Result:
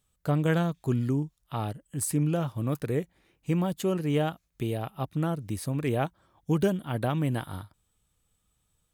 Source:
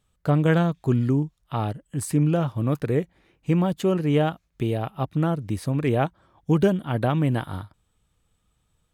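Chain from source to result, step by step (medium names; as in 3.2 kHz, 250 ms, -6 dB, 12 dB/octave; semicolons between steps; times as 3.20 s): treble shelf 6.2 kHz +11.5 dB; trim -5.5 dB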